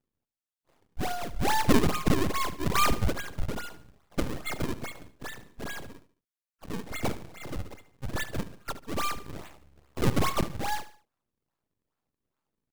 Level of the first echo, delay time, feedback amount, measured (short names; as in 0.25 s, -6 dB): -15.0 dB, 73 ms, 38%